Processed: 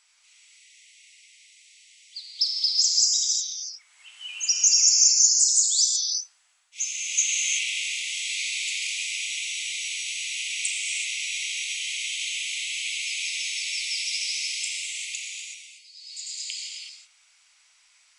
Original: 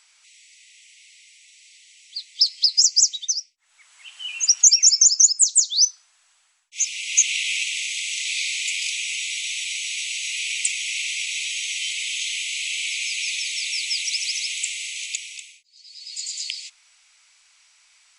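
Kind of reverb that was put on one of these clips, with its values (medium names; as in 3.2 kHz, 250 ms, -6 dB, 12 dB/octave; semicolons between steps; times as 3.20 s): gated-style reverb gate 400 ms flat, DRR -2 dB; trim -7 dB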